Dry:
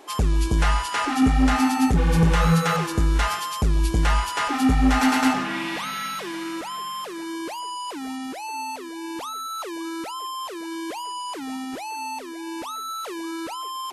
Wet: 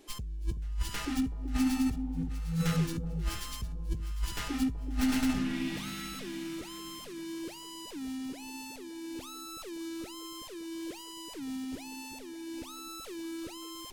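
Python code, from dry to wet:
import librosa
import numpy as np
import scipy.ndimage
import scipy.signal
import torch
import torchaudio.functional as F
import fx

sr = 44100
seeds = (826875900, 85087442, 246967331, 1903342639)

y = fx.tracing_dist(x, sr, depth_ms=0.07)
y = fx.tone_stack(y, sr, knobs='10-0-1')
y = fx.over_compress(y, sr, threshold_db=-38.0, ratio=-1.0)
y = fx.echo_alternate(y, sr, ms=377, hz=820.0, feedback_pct=53, wet_db=-9)
y = y * librosa.db_to_amplitude(5.5)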